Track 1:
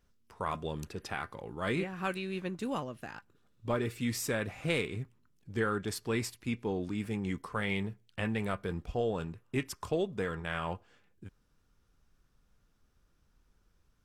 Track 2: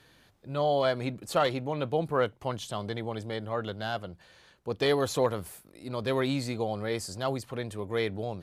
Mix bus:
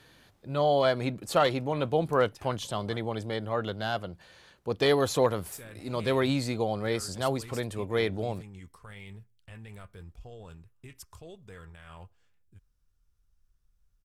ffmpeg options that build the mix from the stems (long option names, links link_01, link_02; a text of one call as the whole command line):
ffmpeg -i stem1.wav -i stem2.wav -filter_complex "[0:a]asubboost=boost=5:cutoff=98,alimiter=level_in=2.5dB:limit=-24dB:level=0:latency=1:release=14,volume=-2.5dB,highshelf=frequency=5200:gain=11,adelay=1300,volume=-12.5dB,asplit=3[link_01][link_02][link_03];[link_01]atrim=end=2.97,asetpts=PTS-STARTPTS,afade=type=out:start_time=2.966:duration=0.004:curve=hsin[link_04];[link_02]atrim=start=2.97:end=5.52,asetpts=PTS-STARTPTS,volume=0[link_05];[link_03]atrim=start=5.52,asetpts=PTS-STARTPTS,afade=type=in:duration=0.004:curve=hsin[link_06];[link_04][link_05][link_06]concat=n=3:v=0:a=1[link_07];[1:a]volume=2dB[link_08];[link_07][link_08]amix=inputs=2:normalize=0" out.wav